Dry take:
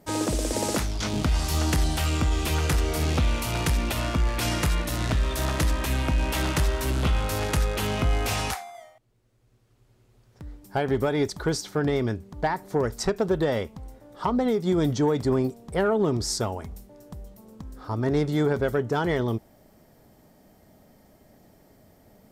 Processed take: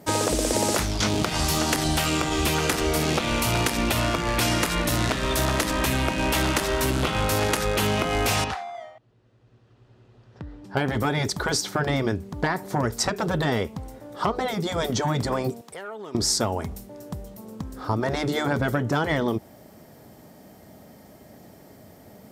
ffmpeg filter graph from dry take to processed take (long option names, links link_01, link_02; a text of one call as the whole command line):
ffmpeg -i in.wav -filter_complex "[0:a]asettb=1/sr,asplit=3[link_01][link_02][link_03];[link_01]atrim=end=8.444[link_04];[link_02]atrim=start=8.44:end=10.77,asetpts=PTS-STARTPTS,afade=type=in:duration=0.004:curve=qsin,afade=type=out:start_time=2.326:duration=0.004:curve=qsin,lowpass=3600,bandreject=frequency=2200:width=10,acompressor=threshold=-42dB:ratio=1.5:attack=3.2:release=140:knee=1:detection=peak[link_05];[link_03]atrim=start=10.766[link_06];[link_04][link_05]acrossfade=duration=0.004:curve1=hsin:curve2=qsin[link_07];[link_07][link_06]acrossfade=duration=0.004:curve1=qsin:curve2=hsin,asettb=1/sr,asplit=3[link_08][link_09][link_10];[link_08]atrim=end=15.614[link_11];[link_09]atrim=start=15.61:end=16.15,asetpts=PTS-STARTPTS,afade=type=in:duration=0.004:curve=qsin,afade=type=out:start_time=0.536:duration=0.004:curve=qsin,highpass=frequency=1400:poles=1,acompressor=threshold=-47dB:ratio=2.5:attack=3.2:release=140:knee=1:detection=peak,asoftclip=type=hard:threshold=-34.5dB[link_12];[link_10]atrim=start=16.146[link_13];[link_11][link_12]acrossfade=duration=0.004:curve1=hsin:curve2=qsin[link_14];[link_14][link_13]acrossfade=duration=0.004:curve1=qsin:curve2=hsin,highpass=77,afftfilt=real='re*lt(hypot(re,im),0.355)':imag='im*lt(hypot(re,im),0.355)':win_size=1024:overlap=0.75,acompressor=threshold=-27dB:ratio=6,volume=8dB" out.wav